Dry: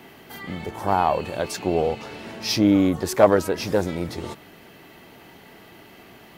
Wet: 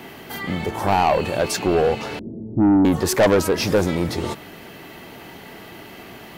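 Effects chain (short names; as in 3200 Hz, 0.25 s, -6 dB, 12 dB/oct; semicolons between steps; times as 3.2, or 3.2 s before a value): 2.19–2.85 inverse Chebyshev low-pass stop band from 2200 Hz, stop band 80 dB; soft clip -18.5 dBFS, distortion -8 dB; gain +7.5 dB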